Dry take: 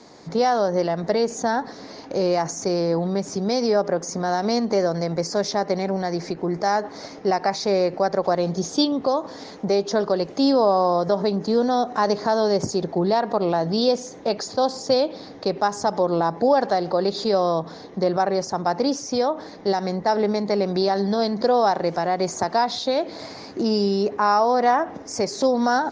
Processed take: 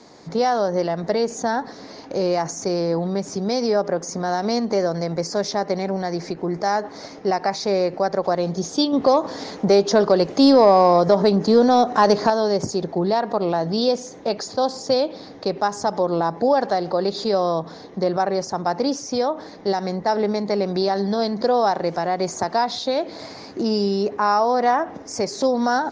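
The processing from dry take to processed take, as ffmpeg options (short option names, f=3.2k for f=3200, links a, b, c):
-filter_complex "[0:a]asettb=1/sr,asplit=3[a][b][c];[a]atrim=end=8.934[d];[b]atrim=start=8.93:end=12.3,asetpts=PTS-STARTPTS,afade=t=in:d=0.004:c=qsin,afade=t=out:st=3.366:d=0.004:c=qsin,acontrast=46[e];[c]atrim=start=12.296[f];[d][e]acrossfade=d=0.004:c1=hsin:c2=qsin[g];[g][f]acrossfade=d=0.004:c1=qsin:c2=hsin"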